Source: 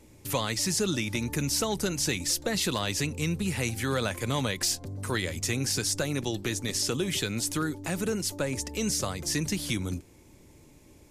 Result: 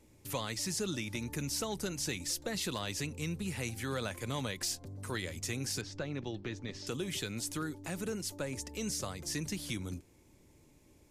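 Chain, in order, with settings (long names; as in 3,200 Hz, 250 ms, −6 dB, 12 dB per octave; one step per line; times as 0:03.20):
0:05.81–0:06.87: high-frequency loss of the air 200 metres
level −8 dB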